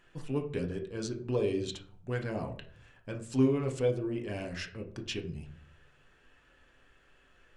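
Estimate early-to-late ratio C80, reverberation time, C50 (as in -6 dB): 15.0 dB, 0.55 s, 10.5 dB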